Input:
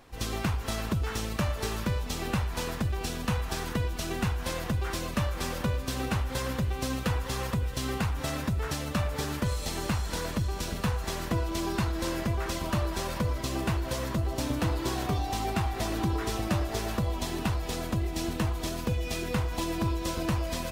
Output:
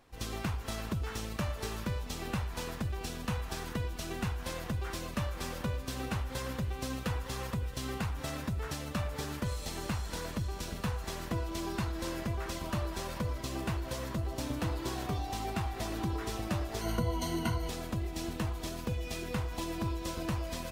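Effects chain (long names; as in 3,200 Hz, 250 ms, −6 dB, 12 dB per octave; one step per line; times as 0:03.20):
0:16.81–0:17.69: EQ curve with evenly spaced ripples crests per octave 1.9, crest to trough 15 dB
in parallel at −8.5 dB: dead-zone distortion −43.5 dBFS
on the sum: level −8 dB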